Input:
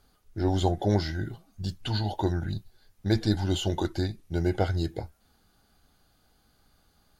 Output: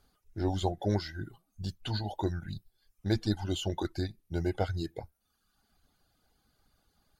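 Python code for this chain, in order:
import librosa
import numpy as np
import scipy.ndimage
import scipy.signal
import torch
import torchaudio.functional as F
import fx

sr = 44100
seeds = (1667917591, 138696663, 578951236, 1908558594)

y = fx.dereverb_blind(x, sr, rt60_s=0.92)
y = y * 10.0 ** (-4.0 / 20.0)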